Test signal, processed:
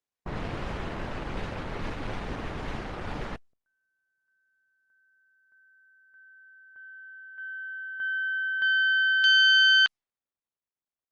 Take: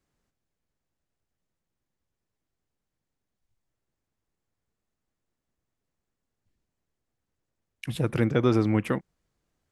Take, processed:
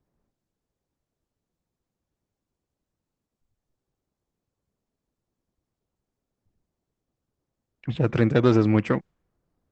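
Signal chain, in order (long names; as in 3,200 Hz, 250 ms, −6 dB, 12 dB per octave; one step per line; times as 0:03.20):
phase distortion by the signal itself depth 0.11 ms
low-pass that shuts in the quiet parts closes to 970 Hz, open at −21.5 dBFS
level +4 dB
Opus 20 kbit/s 48,000 Hz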